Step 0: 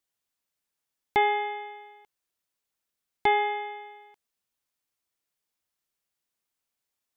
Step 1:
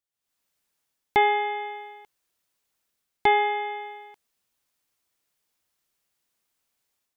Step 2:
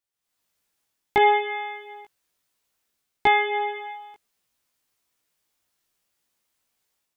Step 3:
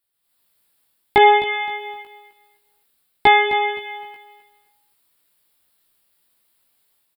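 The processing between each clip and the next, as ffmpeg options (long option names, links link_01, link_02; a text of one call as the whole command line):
ffmpeg -i in.wav -af "dynaudnorm=framelen=110:gausssize=5:maxgain=14dB,volume=-7dB" out.wav
ffmpeg -i in.wav -af "flanger=delay=16:depth=2.3:speed=0.61,volume=5dB" out.wav
ffmpeg -i in.wav -af "aexciter=amount=1.1:drive=2.6:freq=3400,aecho=1:1:260|520|780:0.224|0.0604|0.0163,volume=6dB" out.wav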